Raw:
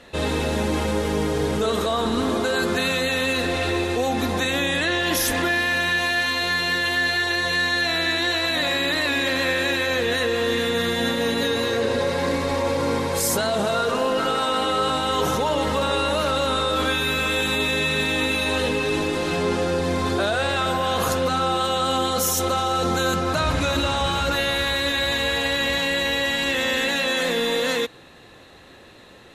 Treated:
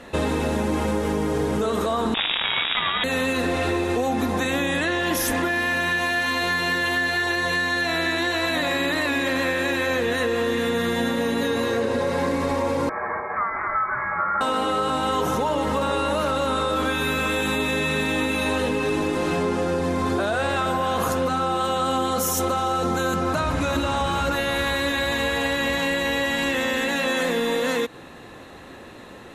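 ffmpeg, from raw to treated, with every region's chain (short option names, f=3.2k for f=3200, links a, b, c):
-filter_complex "[0:a]asettb=1/sr,asplit=3[a][b][c];[a]atrim=end=2.144[d];[b]atrim=start=2.14:end=3.04,asetpts=PTS-STARTPTS,afade=t=in:d=0.004:c=qsin,afade=t=out:st=0.896:d=0.004:c=qsin,acontrast=46,acrusher=bits=3:dc=4:mix=0:aa=0.000001,lowpass=f=3.2k:t=q:w=0.5098,lowpass=f=3.2k:t=q:w=0.6013,lowpass=f=3.2k:t=q:w=0.9,lowpass=f=3.2k:t=q:w=2.563,afreqshift=-3800[e];[c]atrim=start=3.036[f];[d][e]acrossfade=d=0.004:c1=hsin:c2=qsin[g];[g][f]acrossfade=d=0.004:c1=qsin:c2=hsin,asettb=1/sr,asplit=3[h][i][j];[h]atrim=end=12.894[k];[i]atrim=start=12.89:end=14.41,asetpts=PTS-STARTPTS,afade=t=in:d=0.004:c=qsin,afade=t=out:st=1.516:d=0.004:c=qsin,highpass=f=1.7k:t=q:w=1.6,acompressor=mode=upward:threshold=-26dB:ratio=2.5:attack=3.2:release=140:knee=2.83:detection=peak,lowpass=f=2.3k:t=q:w=0.5098,lowpass=f=2.3k:t=q:w=0.6013,lowpass=f=2.3k:t=q:w=0.9,lowpass=f=2.3k:t=q:w=2.563,afreqshift=-2700[l];[j]atrim=start=14.406[m];[k][l]acrossfade=d=0.004:c1=hsin:c2=qsin[n];[n][m]acrossfade=d=0.004:c1=qsin:c2=hsin,equalizer=f=250:t=o:w=1:g=4,equalizer=f=1k:t=o:w=1:g=3,equalizer=f=4k:t=o:w=1:g=-5,acompressor=threshold=-24dB:ratio=6,volume=4dB"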